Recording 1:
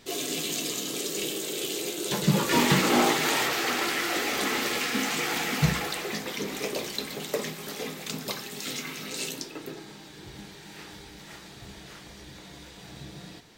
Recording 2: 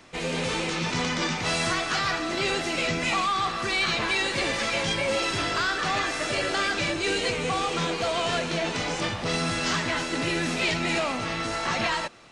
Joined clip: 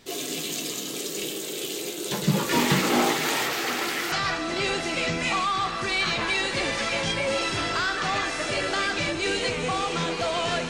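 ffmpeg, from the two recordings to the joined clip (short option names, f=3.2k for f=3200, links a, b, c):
-filter_complex "[0:a]apad=whole_dur=10.69,atrim=end=10.69,atrim=end=4.122[a];[1:a]atrim=start=1.928:end=8.5[b];[a][b]acrossfade=d=0.004:c1=hsin:c2=hsin"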